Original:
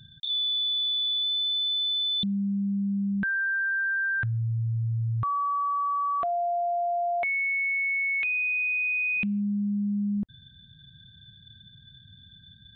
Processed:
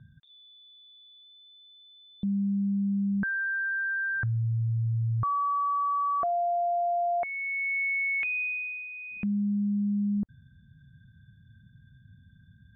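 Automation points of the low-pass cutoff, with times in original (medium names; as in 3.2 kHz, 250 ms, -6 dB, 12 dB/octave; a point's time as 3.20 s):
low-pass 24 dB/octave
7.13 s 1.6 kHz
7.82 s 2.5 kHz
8.41 s 2.5 kHz
8.89 s 1.7 kHz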